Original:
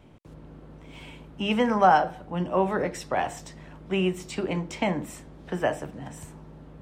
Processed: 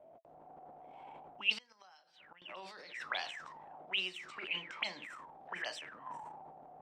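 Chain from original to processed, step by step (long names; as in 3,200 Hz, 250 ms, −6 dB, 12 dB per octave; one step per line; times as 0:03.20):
0:03.75–0:04.18: low-shelf EQ 93 Hz −12 dB
envelope filter 610–4,600 Hz, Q 19, up, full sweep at −22 dBFS
0:01.57–0:02.42: gate with flip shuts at −54 dBFS, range −27 dB
transient designer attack −4 dB, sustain +9 dB
level +14 dB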